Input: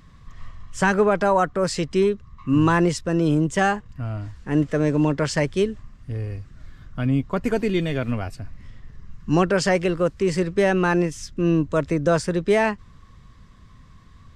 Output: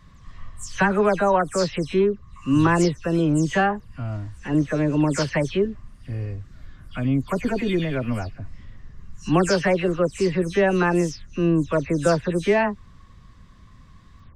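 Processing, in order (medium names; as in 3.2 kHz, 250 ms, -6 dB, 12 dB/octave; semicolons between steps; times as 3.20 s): delay that grows with frequency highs early, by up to 161 ms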